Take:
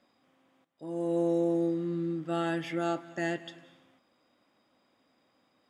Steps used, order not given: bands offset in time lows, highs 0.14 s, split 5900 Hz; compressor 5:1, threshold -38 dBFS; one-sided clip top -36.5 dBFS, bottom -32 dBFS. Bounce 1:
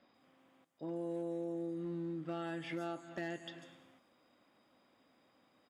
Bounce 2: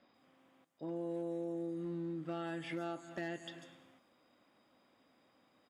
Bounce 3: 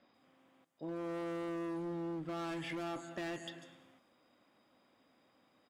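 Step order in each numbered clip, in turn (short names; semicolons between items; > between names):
compressor > bands offset in time > one-sided clip; bands offset in time > compressor > one-sided clip; bands offset in time > one-sided clip > compressor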